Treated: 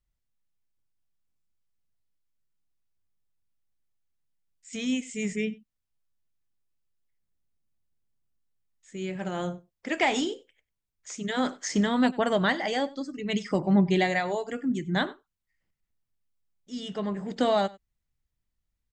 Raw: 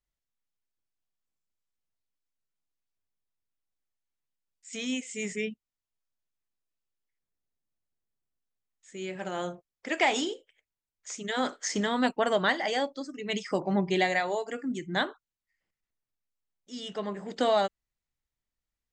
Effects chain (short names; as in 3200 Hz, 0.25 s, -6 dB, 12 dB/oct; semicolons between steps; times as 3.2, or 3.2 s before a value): tone controls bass +10 dB, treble -1 dB; on a send: echo 95 ms -22 dB